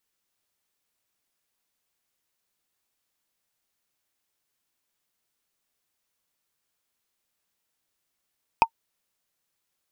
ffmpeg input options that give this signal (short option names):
-f lavfi -i "aevalsrc='0.447*pow(10,-3*t/0.07)*sin(2*PI*910*t)+0.2*pow(10,-3*t/0.021)*sin(2*PI*2508.9*t)+0.0891*pow(10,-3*t/0.009)*sin(2*PI*4917.6*t)+0.0398*pow(10,-3*t/0.005)*sin(2*PI*8129*t)+0.0178*pow(10,-3*t/0.003)*sin(2*PI*12139.4*t)':d=0.45:s=44100"